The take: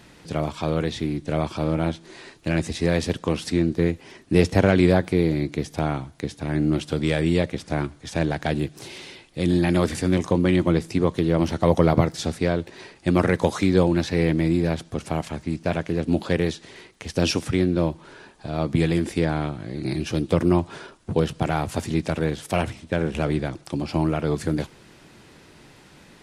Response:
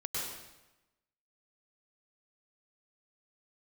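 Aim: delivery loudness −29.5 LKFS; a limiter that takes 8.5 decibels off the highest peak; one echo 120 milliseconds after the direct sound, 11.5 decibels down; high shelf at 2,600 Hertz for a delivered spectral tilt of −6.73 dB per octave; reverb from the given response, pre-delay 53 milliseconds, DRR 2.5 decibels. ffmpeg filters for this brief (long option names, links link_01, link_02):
-filter_complex "[0:a]highshelf=frequency=2600:gain=-5.5,alimiter=limit=-11.5dB:level=0:latency=1,aecho=1:1:120:0.266,asplit=2[link_01][link_02];[1:a]atrim=start_sample=2205,adelay=53[link_03];[link_02][link_03]afir=irnorm=-1:irlink=0,volume=-6dB[link_04];[link_01][link_04]amix=inputs=2:normalize=0,volume=-6.5dB"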